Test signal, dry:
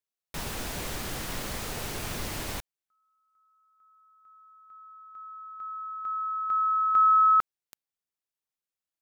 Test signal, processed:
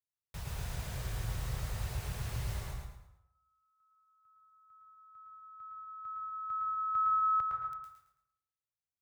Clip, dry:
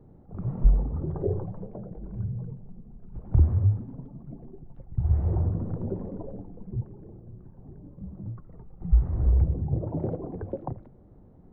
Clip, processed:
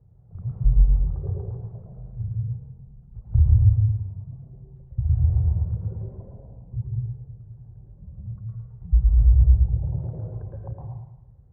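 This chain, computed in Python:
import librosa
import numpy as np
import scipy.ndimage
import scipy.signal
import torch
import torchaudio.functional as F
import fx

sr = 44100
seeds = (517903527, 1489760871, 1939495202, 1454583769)

y = scipy.signal.sosfilt(scipy.signal.butter(2, 42.0, 'highpass', fs=sr, output='sos'), x)
y = fx.dereverb_blind(y, sr, rt60_s=0.6)
y = fx.curve_eq(y, sr, hz=(120.0, 270.0, 470.0), db=(0, -25, -15))
y = fx.echo_feedback(y, sr, ms=110, feedback_pct=34, wet_db=-3.5)
y = fx.rev_plate(y, sr, seeds[0], rt60_s=0.77, hf_ratio=0.5, predelay_ms=110, drr_db=0.5)
y = y * 10.0 ** (2.5 / 20.0)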